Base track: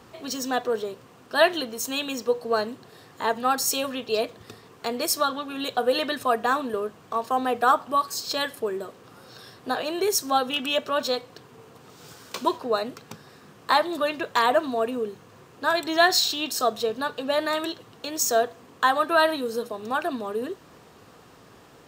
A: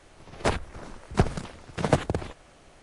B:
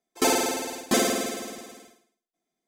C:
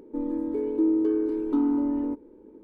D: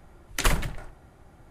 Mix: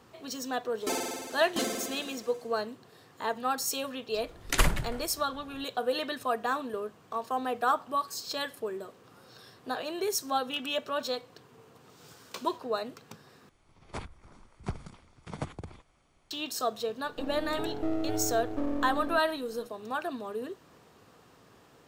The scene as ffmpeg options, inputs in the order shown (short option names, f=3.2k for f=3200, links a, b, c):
-filter_complex "[0:a]volume=-7dB[a];[1:a]aecho=1:1:0.9:0.33[b];[3:a]aeval=exprs='max(val(0),0)':c=same[c];[a]asplit=2[d][e];[d]atrim=end=13.494[f];[b]atrim=end=2.82,asetpts=PTS-STARTPTS,volume=-14.5dB[g];[e]atrim=start=16.306[h];[2:a]atrim=end=2.67,asetpts=PTS-STARTPTS,volume=-10dB,afade=t=in:d=0.004:c=hsin,afade=t=out:st=2.666:d=0.004:c=hsin,adelay=650[i];[4:a]atrim=end=1.5,asetpts=PTS-STARTPTS,volume=-1dB,afade=t=in:d=0.004:c=hsin,afade=t=out:st=1.496:d=0.004:c=hsin,adelay=4140[j];[c]atrim=end=2.63,asetpts=PTS-STARTPTS,volume=-4dB,afade=t=in:d=0.004:c=hsin,afade=t=out:st=2.626:d=0.004:c=hsin,adelay=17040[k];[f][g]acrossfade=d=0.004:c1=hsin:c2=hsin[l];[l][h]acrossfade=d=0.004:c1=hsin:c2=hsin[m];[m][i][j][k]amix=inputs=4:normalize=0"